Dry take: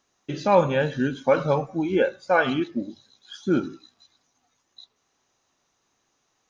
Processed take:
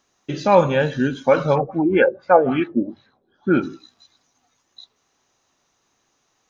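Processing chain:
0:01.55–0:03.61: auto-filter low-pass sine 5.3 Hz → 1.4 Hz 390–2,400 Hz
level +4 dB

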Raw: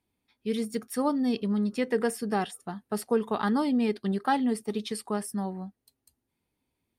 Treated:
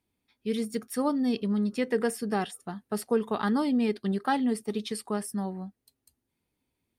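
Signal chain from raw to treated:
parametric band 870 Hz −2 dB

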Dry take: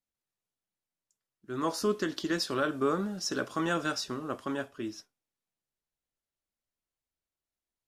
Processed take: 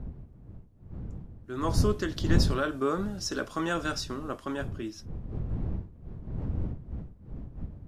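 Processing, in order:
wind on the microphone 120 Hz −33 dBFS

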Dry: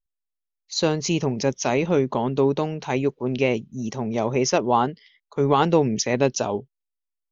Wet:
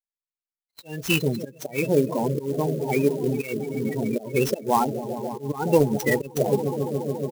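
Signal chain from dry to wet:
double-tracking delay 14 ms −12 dB
echo that builds up and dies away 141 ms, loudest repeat 5, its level −14 dB
volume swells 203 ms
downward expander −24 dBFS
spectral peaks only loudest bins 32
flat-topped bell 2,400 Hz +11.5 dB 1.3 octaves
spectral peaks only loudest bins 16
0:00.78–0:01.23: high-shelf EQ 3,700 Hz +4 dB
0:05.75–0:06.56: transient designer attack +4 dB, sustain −6 dB
converter with an unsteady clock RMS 0.03 ms

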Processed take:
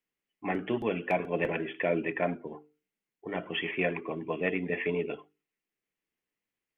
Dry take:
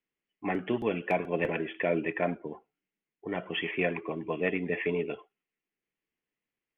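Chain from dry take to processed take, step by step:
mains-hum notches 50/100/150/200/250/300/350/400/450 Hz

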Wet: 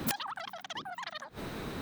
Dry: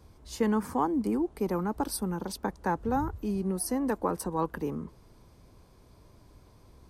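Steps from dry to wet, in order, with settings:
change of speed 3.79×
gate with flip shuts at −26 dBFS, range −27 dB
wrap-around overflow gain 36.5 dB
level +16 dB

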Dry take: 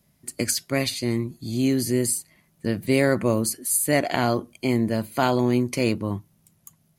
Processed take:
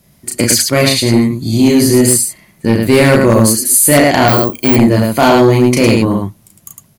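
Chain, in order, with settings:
loudspeakers that aren't time-aligned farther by 12 metres −3 dB, 37 metres −3 dB
0:04.28–0:04.76: bad sample-rate conversion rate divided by 2×, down none, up zero stuff
sine wavefolder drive 10 dB, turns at −1 dBFS
level −1.5 dB

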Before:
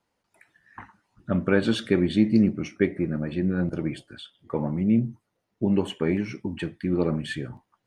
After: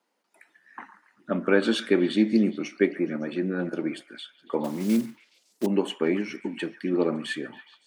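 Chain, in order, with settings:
0:04.64–0:05.68: one scale factor per block 5 bits
high-pass filter 230 Hz 24 dB per octave
echo through a band-pass that steps 140 ms, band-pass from 1,400 Hz, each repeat 0.7 octaves, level −11.5 dB
level +1.5 dB

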